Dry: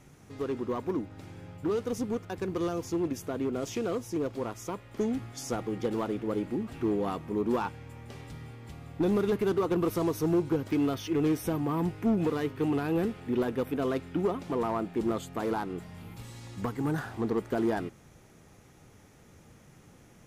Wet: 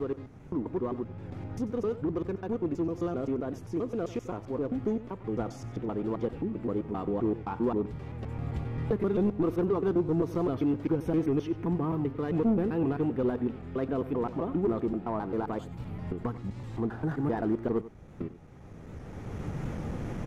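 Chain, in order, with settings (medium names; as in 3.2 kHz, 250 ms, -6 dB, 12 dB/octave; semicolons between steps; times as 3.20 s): slices played last to first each 131 ms, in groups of 4; recorder AGC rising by 16 dB/s; low-pass 1.1 kHz 6 dB/octave; bass shelf 79 Hz +6.5 dB; on a send: delay 93 ms -15.5 dB; on the sum: warped record 78 rpm, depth 100 cents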